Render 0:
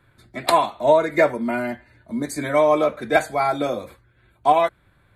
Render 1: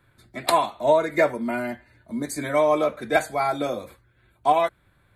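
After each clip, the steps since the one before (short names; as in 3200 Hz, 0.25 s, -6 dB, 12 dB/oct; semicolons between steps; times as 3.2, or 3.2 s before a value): high shelf 6200 Hz +4.5 dB; gain -3 dB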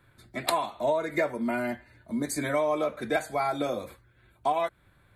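compressor 3:1, threshold -25 dBFS, peak gain reduction 9.5 dB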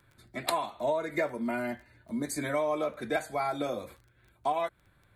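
crackle 14/s -44 dBFS; gain -3 dB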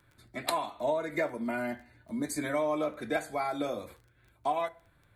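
FDN reverb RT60 0.43 s, low-frequency decay 1.05×, high-frequency decay 0.6×, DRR 13.5 dB; gain -1 dB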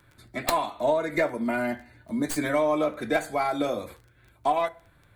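tracing distortion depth 0.15 ms; gain +6 dB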